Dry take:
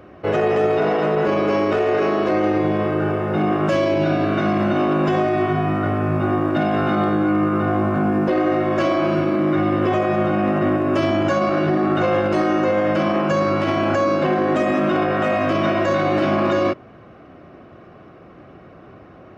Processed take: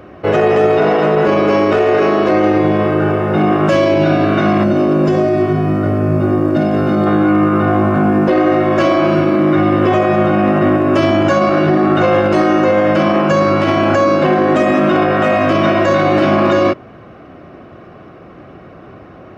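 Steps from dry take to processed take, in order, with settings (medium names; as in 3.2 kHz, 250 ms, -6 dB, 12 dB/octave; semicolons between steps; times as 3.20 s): time-frequency box 4.64–7.07 s, 650–4100 Hz -7 dB; trim +6.5 dB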